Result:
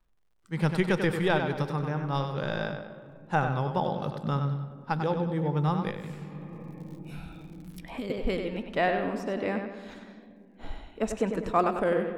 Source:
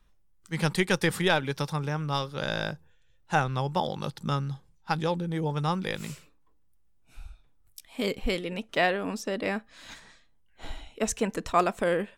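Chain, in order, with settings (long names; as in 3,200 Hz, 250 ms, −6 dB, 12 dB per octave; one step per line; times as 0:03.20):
parametric band 6,300 Hz −3.5 dB 0.28 octaves
tape delay 96 ms, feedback 45%, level −6 dB, low-pass 5,700 Hz
on a send at −14 dB: convolution reverb RT60 2.9 s, pre-delay 4 ms
on the sum: noise reduction from a noise print of the clip's start 8 dB
surface crackle 110 per second −57 dBFS
high-shelf EQ 2,500 Hz −12 dB
0:05.90–0:08.10: multiband upward and downward compressor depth 100%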